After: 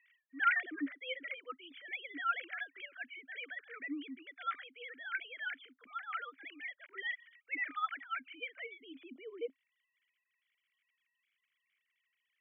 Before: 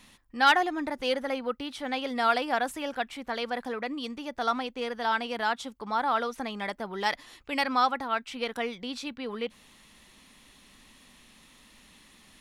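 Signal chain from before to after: sine-wave speech; vowel filter i; band-pass sweep 1500 Hz -> 580 Hz, 8.21–9.53; gain +16 dB

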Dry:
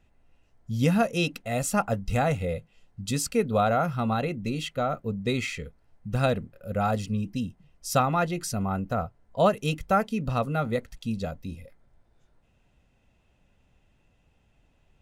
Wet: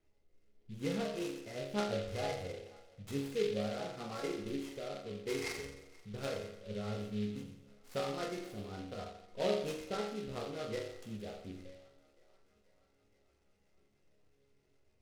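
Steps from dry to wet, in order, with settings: elliptic low-pass 4600 Hz; in parallel at +1.5 dB: compressor, threshold -40 dBFS, peak gain reduction 21 dB; on the sum: rotary speaker horn 0.9 Hz, later 7.5 Hz, at 7.06; flange 0.23 Hz, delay 3.1 ms, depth 6.7 ms, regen +72%; resonator bank C#2 sus4, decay 0.79 s; small resonant body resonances 400/2100 Hz, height 14 dB, ringing for 30 ms; on a send: thinning echo 0.48 s, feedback 71%, high-pass 380 Hz, level -23 dB; on the sum: noise-modulated delay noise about 2900 Hz, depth 0.063 ms; gain +5.5 dB

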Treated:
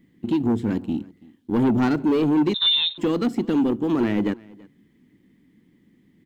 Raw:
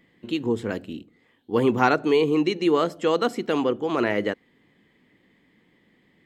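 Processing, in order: G.711 law mismatch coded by A; resonant low shelf 400 Hz +11 dB, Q 1.5; in parallel at +1.5 dB: compressor, threshold -23 dBFS, peak gain reduction 16 dB; on the sum: soft clip -10 dBFS, distortion -12 dB; on a send: echo 0.332 s -23.5 dB; 2.54–2.98 on the sum: inverted band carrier 3900 Hz; gain -5 dB

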